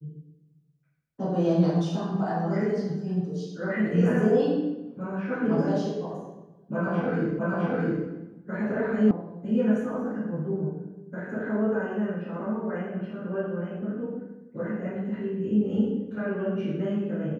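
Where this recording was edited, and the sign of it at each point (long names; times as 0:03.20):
0:07.39: the same again, the last 0.66 s
0:09.11: cut off before it has died away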